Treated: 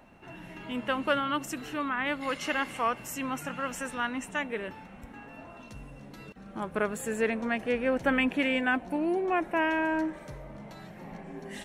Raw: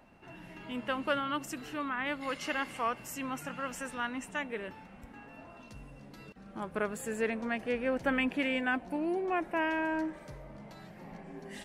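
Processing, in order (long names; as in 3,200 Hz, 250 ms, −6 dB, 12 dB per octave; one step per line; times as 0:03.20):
notch filter 4,800 Hz, Q 11
level +4 dB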